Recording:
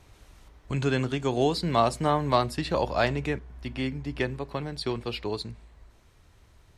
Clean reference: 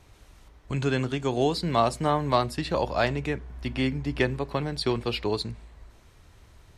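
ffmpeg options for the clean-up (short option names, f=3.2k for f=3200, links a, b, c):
-af "asetnsamples=n=441:p=0,asendcmd='3.39 volume volume 4dB',volume=0dB"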